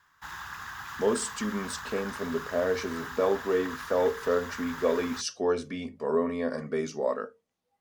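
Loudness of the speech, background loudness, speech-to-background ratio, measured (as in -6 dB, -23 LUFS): -30.0 LUFS, -39.5 LUFS, 9.5 dB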